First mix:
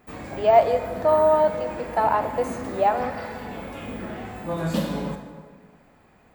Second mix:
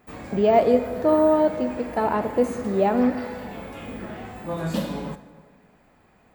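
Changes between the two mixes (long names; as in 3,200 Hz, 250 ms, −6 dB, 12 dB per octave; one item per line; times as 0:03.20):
speech: remove high-pass with resonance 750 Hz, resonance Q 1.6
background: send −7.5 dB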